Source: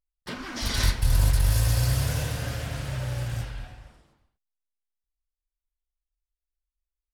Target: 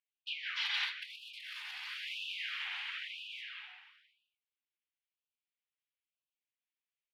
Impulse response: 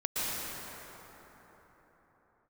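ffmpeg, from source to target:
-filter_complex "[0:a]firequalizer=gain_entry='entry(130,0);entry(200,-30);entry(820,-5);entry(1300,-7);entry(2100,6);entry(3000,9);entry(5300,-12);entry(7900,-24)':delay=0.05:min_phase=1,asplit=2[a][b];[b]asetrate=35002,aresample=44100,atempo=1.25992,volume=-4dB[c];[a][c]amix=inputs=2:normalize=0,acompressor=threshold=-24dB:ratio=12,afftfilt=real='re*gte(b*sr/1024,690*pow(2500/690,0.5+0.5*sin(2*PI*1*pts/sr)))':imag='im*gte(b*sr/1024,690*pow(2500/690,0.5+0.5*sin(2*PI*1*pts/sr)))':win_size=1024:overlap=0.75,volume=-3dB"

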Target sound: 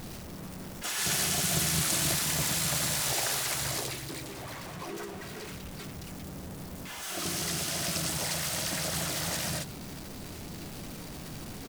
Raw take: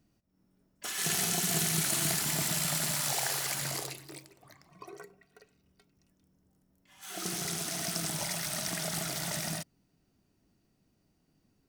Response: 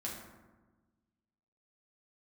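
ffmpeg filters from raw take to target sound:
-filter_complex "[0:a]aeval=exprs='val(0)+0.5*0.0168*sgn(val(0))':c=same,asplit=3[a][b][c];[b]asetrate=22050,aresample=44100,atempo=2,volume=-7dB[d];[c]asetrate=37084,aresample=44100,atempo=1.18921,volume=-4dB[e];[a][d][e]amix=inputs=3:normalize=0,volume=-2dB"

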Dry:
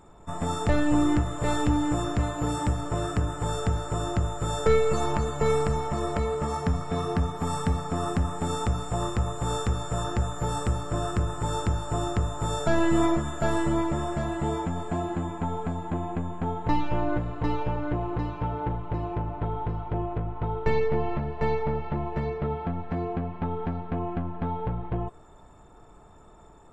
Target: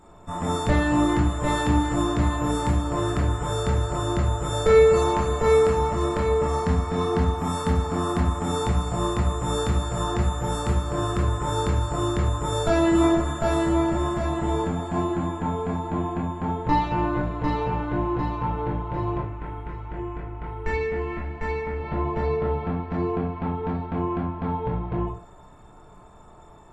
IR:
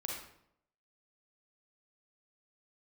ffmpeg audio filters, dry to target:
-filter_complex "[0:a]asettb=1/sr,asplit=3[a][b][c];[a]atrim=end=19.204[d];[b]atrim=start=19.2:end=21.8,asetpts=PTS-STARTPTS,afade=t=in:d=0.004:c=qsin,afade=t=out:st=2.596:d=0.004:c=qsin,equalizer=f=125:t=o:w=1:g=-11,equalizer=f=500:t=o:w=1:g=-9,equalizer=f=1k:t=o:w=1:g=-6,equalizer=f=2k:t=o:w=1:g=4,equalizer=f=4k:t=o:w=1:g=-8,equalizer=f=8k:t=o:w=1:g=4[e];[c]atrim=start=21.796[f];[d][e]acrossfade=d=0.004:c1=hsin:c2=qsin[g];[g][f]acrossfade=d=0.004:c1=qsin:c2=hsin[h];[1:a]atrim=start_sample=2205,asetrate=83790,aresample=44100[i];[h][i]afir=irnorm=-1:irlink=0,volume=8.5dB"

